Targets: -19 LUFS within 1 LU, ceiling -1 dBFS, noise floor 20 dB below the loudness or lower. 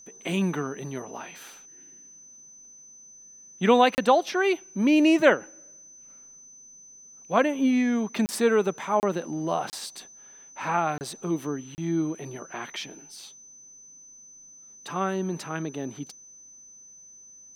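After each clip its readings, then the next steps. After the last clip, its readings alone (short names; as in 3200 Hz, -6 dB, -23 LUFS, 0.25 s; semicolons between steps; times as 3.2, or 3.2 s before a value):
dropouts 6; longest dropout 29 ms; steady tone 6100 Hz; tone level -47 dBFS; loudness -25.5 LUFS; peak -4.0 dBFS; loudness target -19.0 LUFS
-> interpolate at 3.95/8.26/9/9.7/10.98/11.75, 29 ms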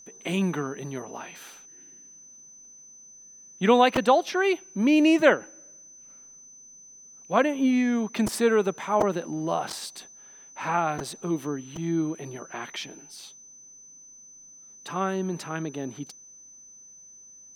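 dropouts 0; steady tone 6100 Hz; tone level -47 dBFS
-> notch 6100 Hz, Q 30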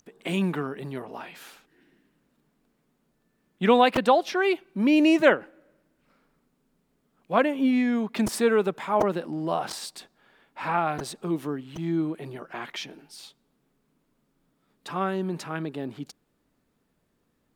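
steady tone none; loudness -25.5 LUFS; peak -4.0 dBFS; loudness target -19.0 LUFS
-> gain +6.5 dB; limiter -1 dBFS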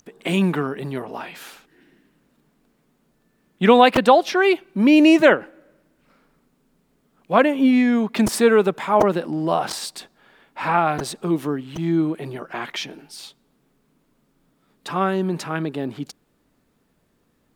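loudness -19.5 LUFS; peak -1.0 dBFS; noise floor -66 dBFS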